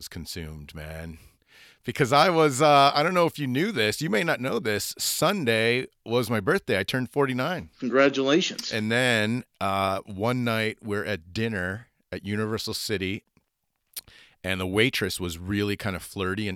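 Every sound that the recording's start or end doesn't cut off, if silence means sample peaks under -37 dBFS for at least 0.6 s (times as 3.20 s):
1.86–13.18 s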